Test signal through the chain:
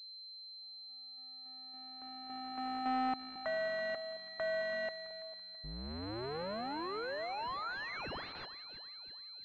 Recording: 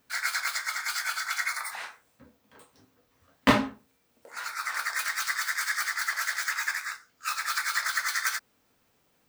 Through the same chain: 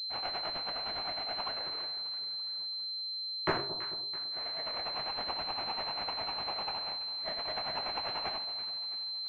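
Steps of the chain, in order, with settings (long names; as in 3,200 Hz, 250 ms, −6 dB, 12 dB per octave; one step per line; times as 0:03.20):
sub-harmonics by changed cycles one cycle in 2, inverted
low-shelf EQ 270 Hz −8 dB
on a send: echo with a time of its own for lows and highs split 970 Hz, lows 219 ms, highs 332 ms, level −12 dB
on the sum: switching amplifier with a slow clock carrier 4,100 Hz
level −7.5 dB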